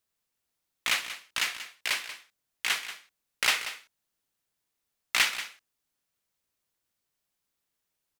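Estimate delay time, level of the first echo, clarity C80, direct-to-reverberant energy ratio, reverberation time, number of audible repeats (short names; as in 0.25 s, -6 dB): 0.185 s, -12.5 dB, none, none, none, 1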